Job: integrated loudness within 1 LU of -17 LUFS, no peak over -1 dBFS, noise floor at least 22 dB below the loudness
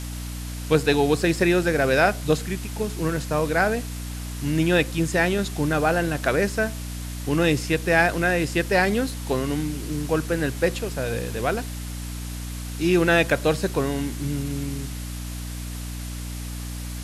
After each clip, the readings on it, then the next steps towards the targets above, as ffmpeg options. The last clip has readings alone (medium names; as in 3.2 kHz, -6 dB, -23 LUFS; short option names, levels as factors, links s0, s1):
hum 60 Hz; highest harmonic 300 Hz; hum level -30 dBFS; noise floor -32 dBFS; noise floor target -46 dBFS; loudness -24.0 LUFS; peak level -4.0 dBFS; loudness target -17.0 LUFS
-> -af "bandreject=f=60:t=h:w=4,bandreject=f=120:t=h:w=4,bandreject=f=180:t=h:w=4,bandreject=f=240:t=h:w=4,bandreject=f=300:t=h:w=4"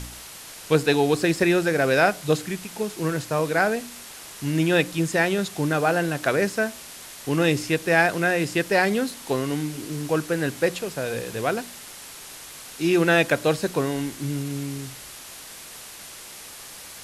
hum not found; noise floor -41 dBFS; noise floor target -46 dBFS
-> -af "afftdn=nr=6:nf=-41"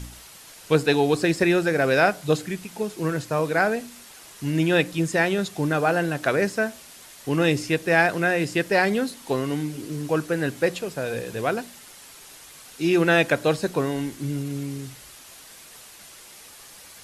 noise floor -46 dBFS; loudness -23.5 LUFS; peak level -4.5 dBFS; loudness target -17.0 LUFS
-> -af "volume=2.11,alimiter=limit=0.891:level=0:latency=1"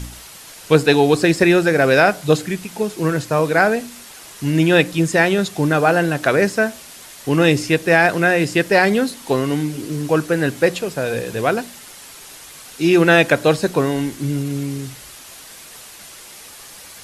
loudness -17.0 LUFS; peak level -1.0 dBFS; noise floor -40 dBFS